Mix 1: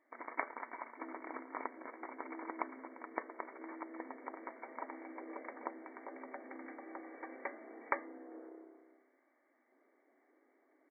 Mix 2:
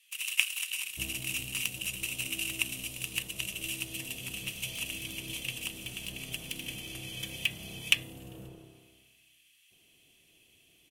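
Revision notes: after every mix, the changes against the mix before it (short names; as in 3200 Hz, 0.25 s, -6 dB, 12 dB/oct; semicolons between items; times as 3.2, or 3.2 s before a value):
first sound: add resonant high-pass 2700 Hz, resonance Q 8; master: remove brick-wall FIR band-pass 240–2300 Hz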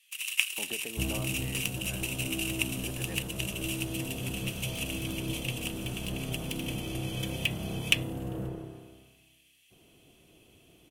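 speech: unmuted; second sound +11.5 dB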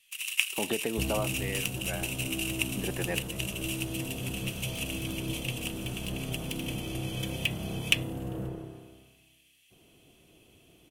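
speech +11.0 dB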